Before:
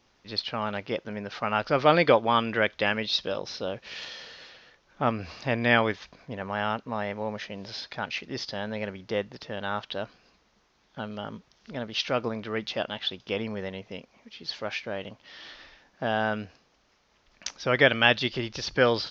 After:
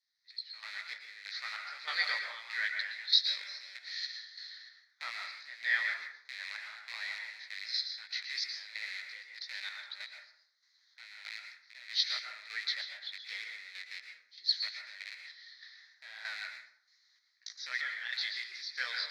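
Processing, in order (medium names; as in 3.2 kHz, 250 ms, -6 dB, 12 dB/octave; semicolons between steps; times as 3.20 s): rattle on loud lows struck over -41 dBFS, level -21 dBFS; two resonant band-passes 2.8 kHz, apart 1.1 oct; level rider gain up to 16 dB; chorus 2.7 Hz, delay 15 ms, depth 4.9 ms; square tremolo 1.6 Hz, depth 65%, duty 50%; differentiator; plate-style reverb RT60 0.66 s, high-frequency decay 0.5×, pre-delay 105 ms, DRR 3 dB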